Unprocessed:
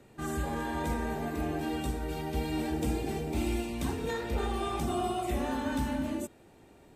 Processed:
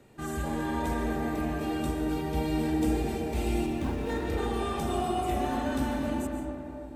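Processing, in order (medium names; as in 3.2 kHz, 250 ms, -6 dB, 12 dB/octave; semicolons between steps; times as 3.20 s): 3.66–4.27 s: median filter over 9 samples; algorithmic reverb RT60 3.5 s, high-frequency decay 0.3×, pre-delay 95 ms, DRR 2.5 dB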